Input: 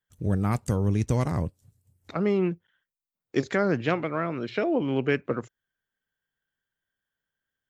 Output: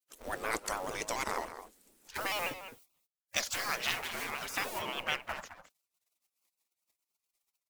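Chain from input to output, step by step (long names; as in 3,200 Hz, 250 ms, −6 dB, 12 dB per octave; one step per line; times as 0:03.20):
mu-law and A-law mismatch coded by mu
gate on every frequency bin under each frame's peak −20 dB weak
0:02.14–0:04.82: high-shelf EQ 5,200 Hz +12 dB
slap from a distant wall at 36 metres, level −11 dB
pitch modulation by a square or saw wave square 6.9 Hz, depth 100 cents
level +4.5 dB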